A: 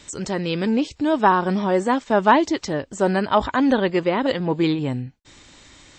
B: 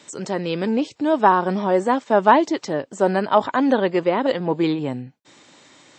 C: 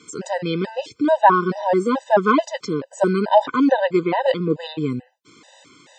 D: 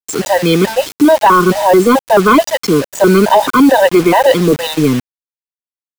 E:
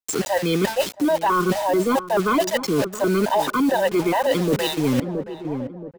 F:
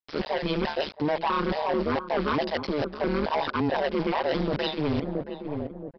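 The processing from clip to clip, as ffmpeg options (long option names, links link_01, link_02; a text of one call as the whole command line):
ffmpeg -i in.wav -af "highpass=frequency=130:width=0.5412,highpass=frequency=130:width=1.3066,equalizer=frequency=650:width=0.64:gain=5.5,volume=-3dB" out.wav
ffmpeg -i in.wav -af "afftfilt=real='re*gt(sin(2*PI*2.3*pts/sr)*(1-2*mod(floor(b*sr/1024/510),2)),0)':imag='im*gt(sin(2*PI*2.3*pts/sr)*(1-2*mod(floor(b*sr/1024/510),2)),0)':win_size=1024:overlap=0.75,volume=3.5dB" out.wav
ffmpeg -i in.wav -filter_complex "[0:a]acrossover=split=180|1300[link_01][link_02][link_03];[link_01]asoftclip=type=hard:threshold=-33.5dB[link_04];[link_04][link_02][link_03]amix=inputs=3:normalize=0,acrusher=bits=5:mix=0:aa=0.000001,apsyclip=15.5dB,volume=-2.5dB" out.wav
ffmpeg -i in.wav -filter_complex "[0:a]asplit=2[link_01][link_02];[link_02]adelay=674,lowpass=frequency=870:poles=1,volume=-15.5dB,asplit=2[link_03][link_04];[link_04]adelay=674,lowpass=frequency=870:poles=1,volume=0.39,asplit=2[link_05][link_06];[link_06]adelay=674,lowpass=frequency=870:poles=1,volume=0.39[link_07];[link_01][link_03][link_05][link_07]amix=inputs=4:normalize=0,areverse,acompressor=threshold=-18dB:ratio=6,areverse" out.wav
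ffmpeg -i in.wav -af "aresample=11025,asoftclip=type=hard:threshold=-19dB,aresample=44100,tremolo=f=150:d=0.919" out.wav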